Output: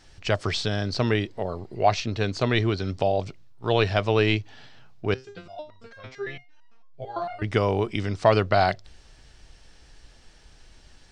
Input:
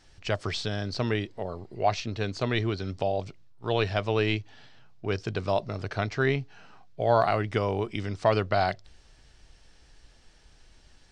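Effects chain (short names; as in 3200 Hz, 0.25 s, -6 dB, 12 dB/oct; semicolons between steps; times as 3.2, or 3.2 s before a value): 5.14–7.42 stepped resonator 8.9 Hz 130–950 Hz; gain +4.5 dB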